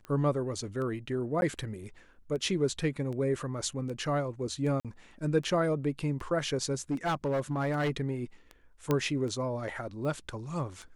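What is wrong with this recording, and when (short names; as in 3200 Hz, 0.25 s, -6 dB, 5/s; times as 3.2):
tick 78 rpm -29 dBFS
1.41–1.42 gap 11 ms
4.8–4.85 gap 47 ms
6.91–7.96 clipped -25.5 dBFS
8.91 pop -14 dBFS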